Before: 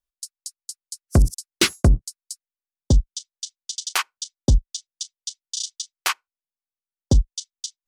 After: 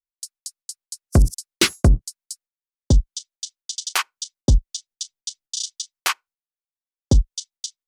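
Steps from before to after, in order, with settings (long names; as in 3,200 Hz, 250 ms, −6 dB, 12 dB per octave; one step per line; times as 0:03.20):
noise gate −51 dBFS, range −16 dB
0:04.91–0:05.69: low-shelf EQ 320 Hz +10 dB
level +1 dB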